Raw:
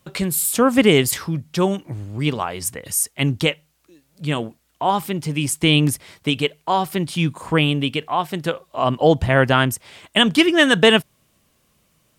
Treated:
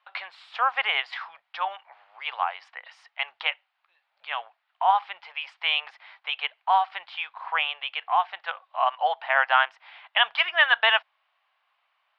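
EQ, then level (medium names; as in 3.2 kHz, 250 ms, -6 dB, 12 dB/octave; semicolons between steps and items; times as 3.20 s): elliptic high-pass 760 Hz, stop band 60 dB; low-pass 4.7 kHz 24 dB/octave; distance through air 390 m; +2.0 dB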